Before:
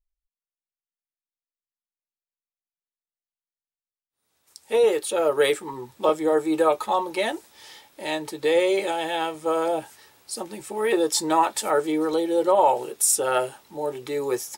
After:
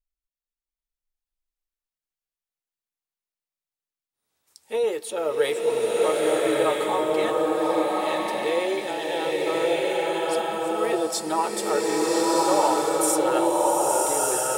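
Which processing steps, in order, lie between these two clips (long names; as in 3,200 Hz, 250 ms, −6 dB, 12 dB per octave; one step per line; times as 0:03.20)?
slow-attack reverb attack 1,270 ms, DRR −4.5 dB
level −5 dB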